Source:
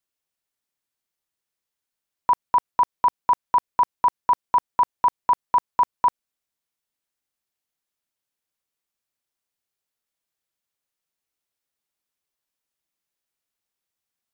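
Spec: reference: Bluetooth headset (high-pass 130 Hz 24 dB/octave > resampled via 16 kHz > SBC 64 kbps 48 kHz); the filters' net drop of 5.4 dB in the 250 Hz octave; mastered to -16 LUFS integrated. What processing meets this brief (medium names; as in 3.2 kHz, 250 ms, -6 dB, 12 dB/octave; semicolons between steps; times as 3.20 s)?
high-pass 130 Hz 24 dB/octave; peaking EQ 250 Hz -7.5 dB; resampled via 16 kHz; trim +7 dB; SBC 64 kbps 48 kHz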